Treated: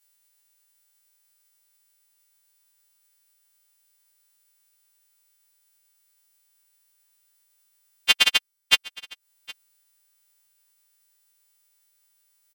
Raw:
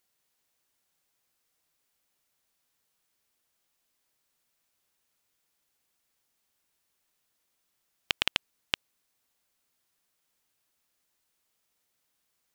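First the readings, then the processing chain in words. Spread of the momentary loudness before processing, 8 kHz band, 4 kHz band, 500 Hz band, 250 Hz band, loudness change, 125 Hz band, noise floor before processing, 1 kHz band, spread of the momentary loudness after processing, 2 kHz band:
6 LU, +15.0 dB, +11.5 dB, +4.5 dB, +2.0 dB, +11.0 dB, can't be measured, −78 dBFS, +7.5 dB, 10 LU, +11.0 dB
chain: every partial snapped to a pitch grid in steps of 2 semitones
transient designer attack +9 dB, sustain −10 dB
on a send: single-tap delay 764 ms −22 dB
on the sum: level −1 dB

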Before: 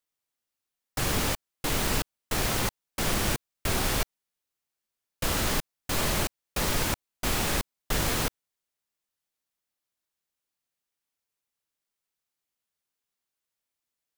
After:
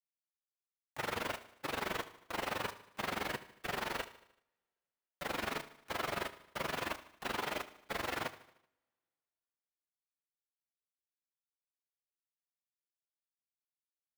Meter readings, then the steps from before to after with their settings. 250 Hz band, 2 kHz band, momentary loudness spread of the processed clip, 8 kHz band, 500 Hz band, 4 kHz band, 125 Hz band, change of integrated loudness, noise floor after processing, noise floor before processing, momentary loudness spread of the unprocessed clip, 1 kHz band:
−12.5 dB, −7.0 dB, 5 LU, −19.5 dB, −7.5 dB, −12.0 dB, −18.5 dB, −11.0 dB, below −85 dBFS, below −85 dBFS, 5 LU, −6.0 dB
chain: partials spread apart or drawn together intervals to 109%
low-pass filter 3,400 Hz 12 dB per octave
noise gate with hold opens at −39 dBFS
high-pass filter 930 Hz 6 dB per octave
high-shelf EQ 2,000 Hz −9 dB
in parallel at −1 dB: brickwall limiter −37 dBFS, peak gain reduction 8.5 dB
on the sum: dead-zone distortion −58 dBFS
bit-depth reduction 8 bits, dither none
amplitude modulation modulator 23 Hz, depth 85%
on a send: repeating echo 76 ms, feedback 53%, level −16.5 dB
on the sum: coupled-rooms reverb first 0.58 s, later 2.3 s, from −26 dB, DRR 17 dB
level +4 dB

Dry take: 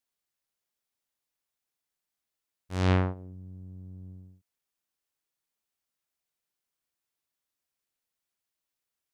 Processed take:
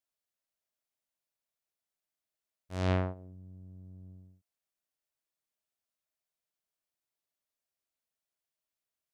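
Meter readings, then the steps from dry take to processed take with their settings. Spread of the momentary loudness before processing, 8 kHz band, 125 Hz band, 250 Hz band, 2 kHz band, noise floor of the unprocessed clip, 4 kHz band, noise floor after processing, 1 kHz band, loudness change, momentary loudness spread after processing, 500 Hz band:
20 LU, can't be measured, −5.5 dB, −5.5 dB, −5.5 dB, below −85 dBFS, −5.5 dB, below −85 dBFS, −4.5 dB, −5.0 dB, 20 LU, −2.5 dB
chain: parametric band 630 Hz +8.5 dB 0.23 octaves
level −5.5 dB

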